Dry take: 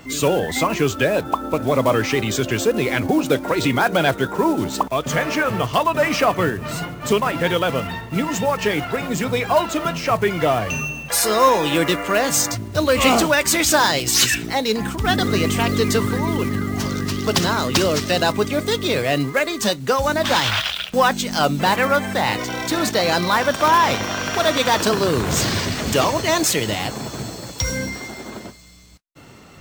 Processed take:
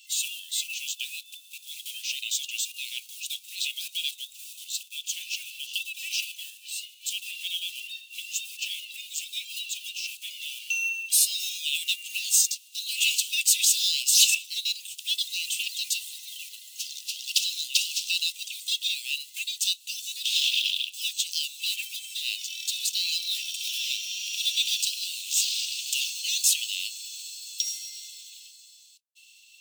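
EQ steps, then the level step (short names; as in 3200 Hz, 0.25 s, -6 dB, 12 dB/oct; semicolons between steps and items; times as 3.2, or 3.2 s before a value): rippled Chebyshev high-pass 2600 Hz, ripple 3 dB; 0.0 dB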